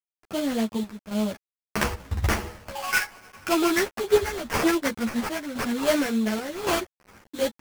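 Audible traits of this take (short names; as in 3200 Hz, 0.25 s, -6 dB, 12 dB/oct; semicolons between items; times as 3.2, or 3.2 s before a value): aliases and images of a low sample rate 3800 Hz, jitter 20%; chopped level 0.9 Hz, depth 65%, duty 75%; a quantiser's noise floor 8-bit, dither none; a shimmering, thickened sound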